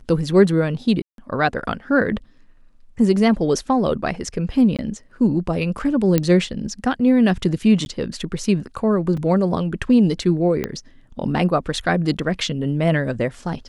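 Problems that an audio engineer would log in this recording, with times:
1.02–1.18 s: dropout 162 ms
4.77–4.79 s: dropout 17 ms
6.18 s: pop -4 dBFS
7.85–7.86 s: dropout
9.17 s: dropout 4 ms
10.64 s: pop -10 dBFS

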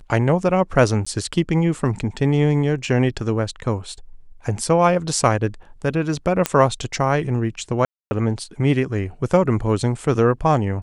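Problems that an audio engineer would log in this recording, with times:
1.05–1.06 s: dropout 15 ms
6.46 s: pop -3 dBFS
7.85–8.11 s: dropout 260 ms

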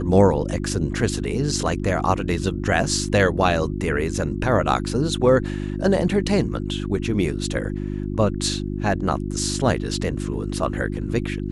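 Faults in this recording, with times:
hum 50 Hz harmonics 7 -27 dBFS

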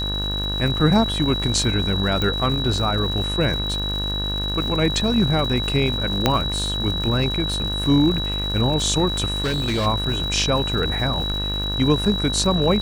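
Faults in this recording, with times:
buzz 50 Hz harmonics 36 -27 dBFS
crackle 260 per s -30 dBFS
whine 3.9 kHz -25 dBFS
2.22 s: pop
6.26 s: pop -2 dBFS
9.40–9.87 s: clipped -18.5 dBFS

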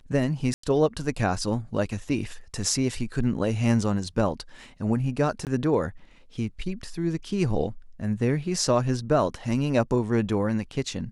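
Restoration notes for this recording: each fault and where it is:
0.54–0.63 s: dropout 94 ms
5.45–5.47 s: dropout 18 ms

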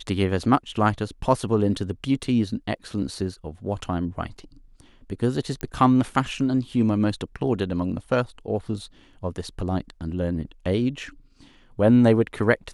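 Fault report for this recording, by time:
5.61 s: pop -16 dBFS

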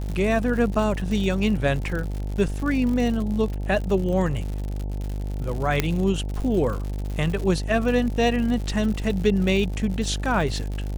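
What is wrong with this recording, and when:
buzz 50 Hz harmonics 18 -28 dBFS
crackle 130 per s -30 dBFS
5.80 s: pop -6 dBFS

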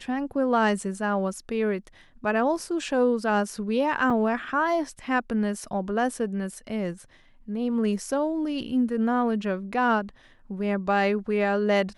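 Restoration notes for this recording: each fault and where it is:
4.10 s: dropout 3.7 ms

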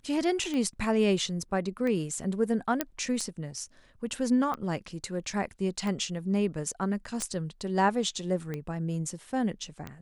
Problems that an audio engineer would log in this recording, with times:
tick 45 rpm -22 dBFS
2.81 s: pop -10 dBFS
7.22 s: pop -16 dBFS

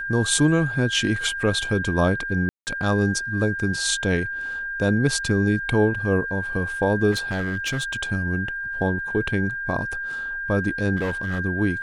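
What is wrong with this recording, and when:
whine 1.6 kHz -27 dBFS
2.49–2.67 s: dropout 179 ms
7.11–7.96 s: clipped -21 dBFS
10.96–11.39 s: clipped -21 dBFS

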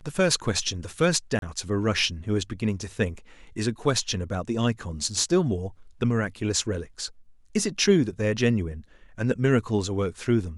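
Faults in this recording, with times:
1.39–1.42 s: dropout 32 ms

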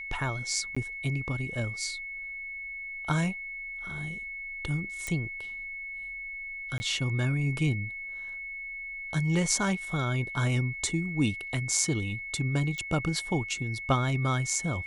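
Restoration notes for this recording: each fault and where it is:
whine 2.2 kHz -36 dBFS
0.75–0.77 s: dropout 15 ms
5.07 s: pop -19 dBFS
6.78–6.80 s: dropout 20 ms
12.78 s: pop -23 dBFS

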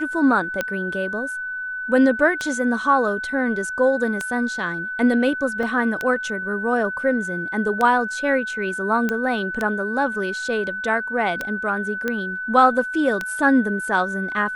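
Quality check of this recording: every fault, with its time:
tick 33 1/3 rpm -9 dBFS
whine 1.5 kHz -26 dBFS
5.63 s: dropout 2.1 ms
9.09 s: pop -11 dBFS
12.08 s: pop -11 dBFS

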